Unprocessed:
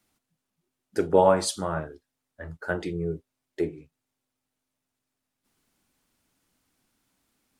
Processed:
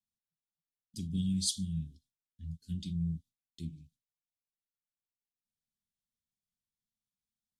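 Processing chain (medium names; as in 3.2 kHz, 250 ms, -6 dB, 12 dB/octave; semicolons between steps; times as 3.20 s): gate with hold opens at -54 dBFS; Chebyshev band-stop 220–3300 Hz, order 4; treble shelf 9.5 kHz -7 dB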